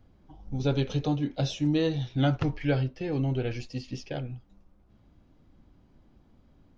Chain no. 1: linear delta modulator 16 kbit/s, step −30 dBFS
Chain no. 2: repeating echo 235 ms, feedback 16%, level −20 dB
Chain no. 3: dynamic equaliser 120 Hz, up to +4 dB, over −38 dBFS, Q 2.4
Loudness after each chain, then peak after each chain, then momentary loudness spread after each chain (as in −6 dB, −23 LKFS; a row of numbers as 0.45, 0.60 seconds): −31.0, −29.5, −28.0 LKFS; −13.5, −14.0, −13.0 dBFS; 12, 11, 11 LU